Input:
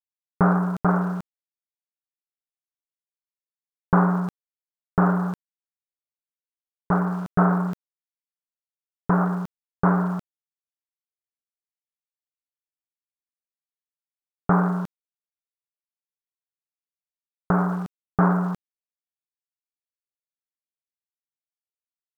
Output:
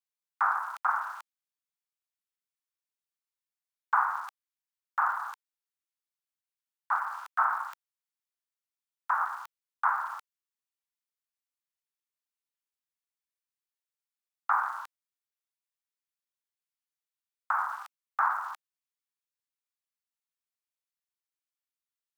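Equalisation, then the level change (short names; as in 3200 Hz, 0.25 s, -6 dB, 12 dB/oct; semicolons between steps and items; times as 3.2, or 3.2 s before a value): steep high-pass 880 Hz 48 dB/oct; 0.0 dB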